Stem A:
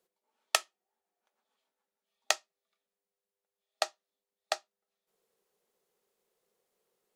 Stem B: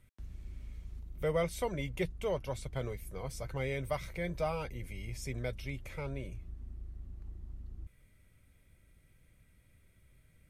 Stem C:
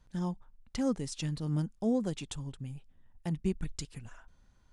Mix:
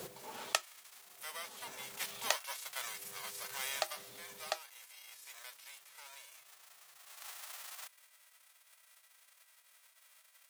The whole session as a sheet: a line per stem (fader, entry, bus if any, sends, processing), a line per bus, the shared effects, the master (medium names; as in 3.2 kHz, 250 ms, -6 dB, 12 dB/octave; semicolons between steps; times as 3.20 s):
-5.5 dB, 0.00 s, no send, peaking EQ 120 Hz +4 dB 0.77 oct; swell ahead of each attack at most 34 dB/s
1.75 s -11.5 dB -> 2.10 s -3.5 dB -> 3.78 s -3.5 dB -> 4.02 s -13 dB -> 6.96 s -13 dB -> 7.26 s -1.5 dB, 0.00 s, no send, formants flattened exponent 0.3; high-pass 760 Hz 24 dB/octave
mute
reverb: none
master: peaking EQ 130 Hz +15 dB 0.45 oct